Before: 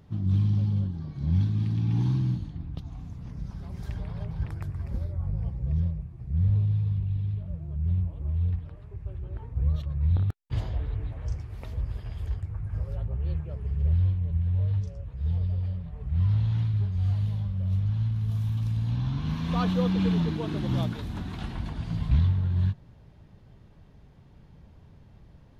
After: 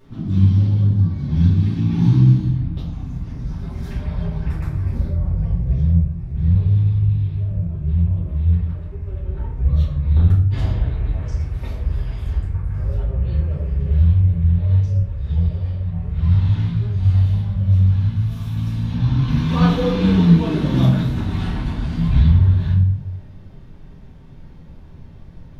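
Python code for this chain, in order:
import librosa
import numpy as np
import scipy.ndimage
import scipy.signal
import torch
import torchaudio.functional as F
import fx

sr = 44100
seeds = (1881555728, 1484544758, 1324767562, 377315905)

y = fx.room_shoebox(x, sr, seeds[0], volume_m3=92.0, walls='mixed', distance_m=2.5)
y = y * 10.0 ** (-1.0 / 20.0)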